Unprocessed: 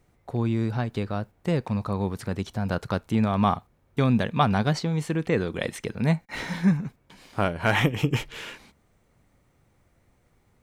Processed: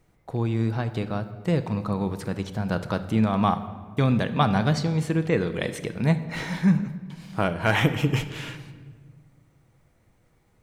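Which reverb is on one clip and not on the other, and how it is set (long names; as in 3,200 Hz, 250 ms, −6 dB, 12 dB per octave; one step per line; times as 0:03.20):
rectangular room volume 1,500 cubic metres, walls mixed, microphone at 0.62 metres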